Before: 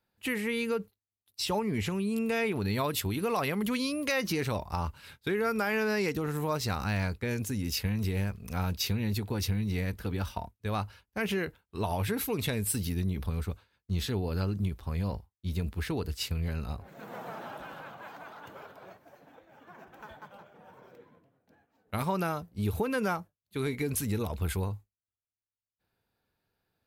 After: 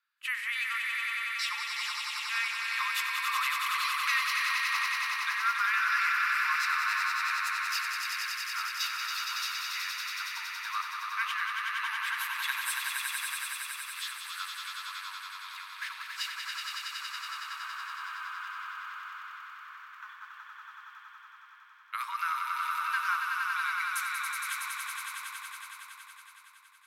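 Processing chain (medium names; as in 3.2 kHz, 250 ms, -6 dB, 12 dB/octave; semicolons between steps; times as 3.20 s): steep high-pass 1.1 kHz 72 dB/octave; tilt EQ -3.5 dB/octave; echo with a slow build-up 93 ms, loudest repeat 5, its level -5 dB; trim +6 dB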